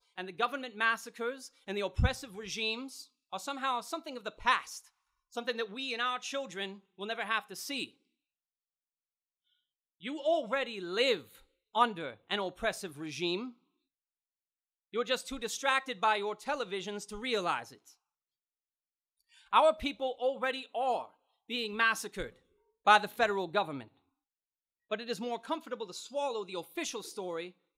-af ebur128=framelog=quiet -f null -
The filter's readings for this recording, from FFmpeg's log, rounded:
Integrated loudness:
  I:         -33.3 LUFS
  Threshold: -43.8 LUFS
Loudness range:
  LRA:         7.3 LU
  Threshold: -54.6 LUFS
  LRA low:   -38.7 LUFS
  LRA high:  -31.4 LUFS